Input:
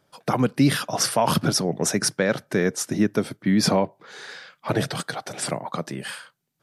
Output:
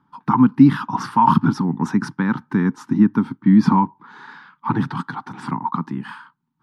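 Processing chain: FFT filter 100 Hz 0 dB, 260 Hz +11 dB, 630 Hz -26 dB, 900 Hz +13 dB, 2.2 kHz -8 dB, 3.4 kHz -9 dB, 8.2 kHz -23 dB

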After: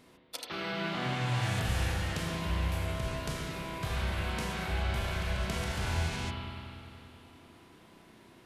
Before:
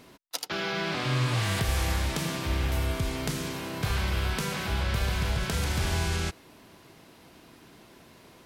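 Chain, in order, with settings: formant shift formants -2 st; spring tank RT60 2.9 s, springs 32/36 ms, chirp 20 ms, DRR -1 dB; trim -7 dB

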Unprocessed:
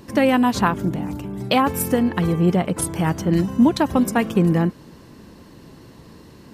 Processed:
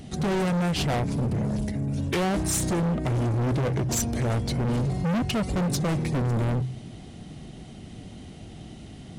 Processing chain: peaking EQ 1.7 kHz -10 dB 0.78 oct; hum notches 60/120/180 Hz; overload inside the chain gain 26 dB; wide varispeed 0.711×; trim +3 dB

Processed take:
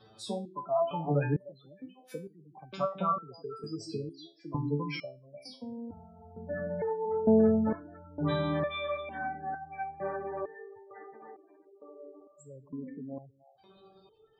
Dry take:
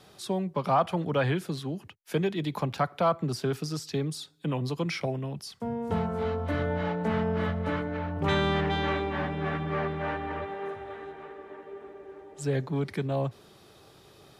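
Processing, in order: repeats whose band climbs or falls 151 ms, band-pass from 260 Hz, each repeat 1.4 oct, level -6 dB; spectral gate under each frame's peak -15 dB strong; resonator arpeggio 2.2 Hz 110–780 Hz; trim +8.5 dB

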